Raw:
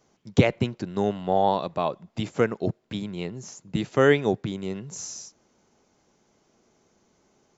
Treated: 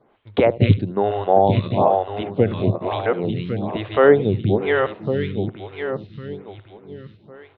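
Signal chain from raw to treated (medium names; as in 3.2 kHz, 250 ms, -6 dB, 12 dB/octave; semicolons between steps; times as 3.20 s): backward echo that repeats 552 ms, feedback 53%, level -4 dB; steep low-pass 3.9 kHz 72 dB/octave; peaking EQ 100 Hz +13 dB 0.35 oct; on a send: delay 75 ms -17 dB; on the sum: dynamic bell 590 Hz, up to +4 dB, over -32 dBFS, Q 0.76; in parallel at -1 dB: compression, threshold -28 dBFS, peak gain reduction 19 dB; on the sum: lamp-driven phase shifter 1.1 Hz; trim +3 dB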